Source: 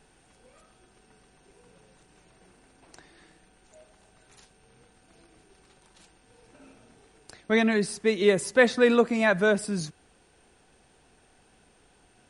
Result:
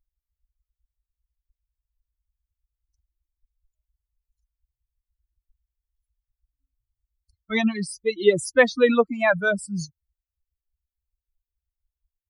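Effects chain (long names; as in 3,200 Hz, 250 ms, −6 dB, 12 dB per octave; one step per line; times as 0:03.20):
spectral dynamics exaggerated over time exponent 3
level +6.5 dB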